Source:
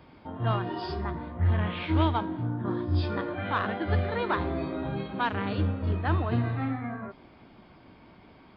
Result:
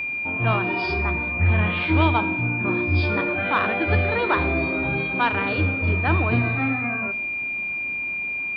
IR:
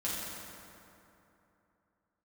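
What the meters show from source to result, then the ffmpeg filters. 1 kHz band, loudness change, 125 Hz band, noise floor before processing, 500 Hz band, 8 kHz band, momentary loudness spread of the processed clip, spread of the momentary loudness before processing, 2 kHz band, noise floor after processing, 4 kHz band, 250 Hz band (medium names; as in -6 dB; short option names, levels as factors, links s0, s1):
+6.5 dB, +7.5 dB, +4.5 dB, -54 dBFS, +6.5 dB, no reading, 5 LU, 7 LU, +16.0 dB, -28 dBFS, +6.0 dB, +5.5 dB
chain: -filter_complex "[0:a]acontrast=79,bandreject=f=50:t=h:w=6,bandreject=f=100:t=h:w=6,bandreject=f=150:t=h:w=6,bandreject=f=200:t=h:w=6,aeval=exprs='val(0)+0.0631*sin(2*PI*2400*n/s)':c=same,asplit=2[s0][s1];[1:a]atrim=start_sample=2205,afade=t=out:st=0.2:d=0.01,atrim=end_sample=9261[s2];[s1][s2]afir=irnorm=-1:irlink=0,volume=0.15[s3];[s0][s3]amix=inputs=2:normalize=0,volume=0.841"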